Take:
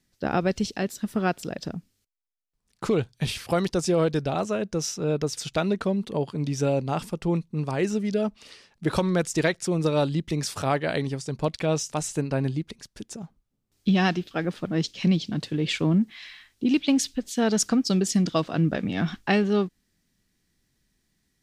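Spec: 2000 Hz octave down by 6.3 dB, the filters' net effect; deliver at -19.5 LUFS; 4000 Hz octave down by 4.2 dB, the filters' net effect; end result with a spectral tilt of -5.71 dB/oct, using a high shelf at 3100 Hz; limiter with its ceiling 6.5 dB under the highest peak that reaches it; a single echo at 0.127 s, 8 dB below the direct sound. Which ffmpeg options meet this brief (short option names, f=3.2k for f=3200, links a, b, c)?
-af "equalizer=f=2k:t=o:g=-8,highshelf=f=3.1k:g=3,equalizer=f=4k:t=o:g=-6,alimiter=limit=-17.5dB:level=0:latency=1,aecho=1:1:127:0.398,volume=8dB"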